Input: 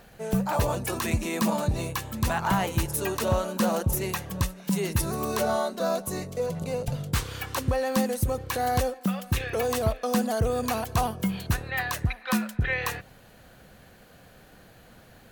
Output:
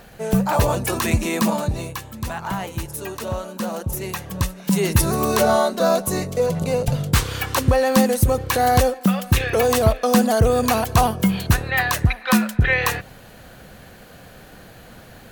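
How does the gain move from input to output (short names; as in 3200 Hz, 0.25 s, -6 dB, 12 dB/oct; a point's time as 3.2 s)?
1.31 s +7 dB
2.17 s -2 dB
3.72 s -2 dB
4.92 s +9 dB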